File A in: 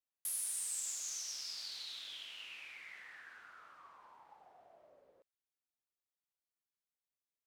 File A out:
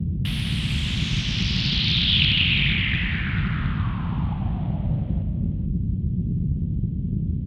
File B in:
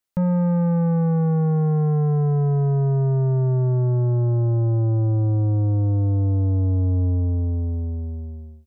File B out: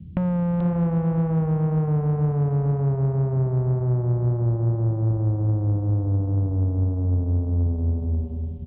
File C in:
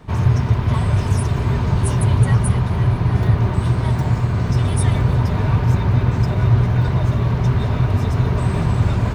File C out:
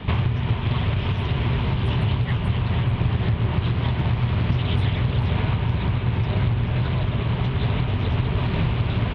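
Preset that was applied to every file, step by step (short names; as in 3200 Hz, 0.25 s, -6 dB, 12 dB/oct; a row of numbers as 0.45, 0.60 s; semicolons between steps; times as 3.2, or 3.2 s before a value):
EQ curve 1500 Hz 0 dB, 3200 Hz +12 dB, 7100 Hz -28 dB; compressor 16:1, threshold -26 dBFS; wow and flutter 16 cents; band noise 38–190 Hz -44 dBFS; echo 0.435 s -9 dB; Doppler distortion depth 0.37 ms; match loudness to -23 LUFS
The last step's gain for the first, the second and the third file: +19.0, +4.5, +7.5 dB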